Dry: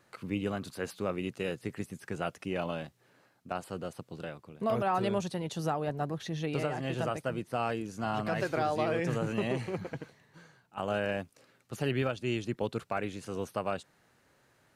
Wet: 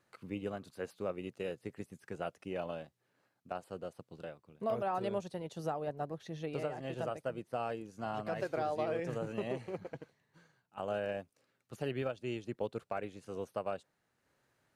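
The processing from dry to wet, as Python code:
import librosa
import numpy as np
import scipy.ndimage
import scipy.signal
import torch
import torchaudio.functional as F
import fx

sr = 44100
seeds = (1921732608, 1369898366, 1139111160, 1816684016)

y = fx.dynamic_eq(x, sr, hz=550.0, q=1.1, threshold_db=-46.0, ratio=4.0, max_db=6)
y = fx.transient(y, sr, attack_db=1, sustain_db=-4)
y = y * 10.0 ** (-9.0 / 20.0)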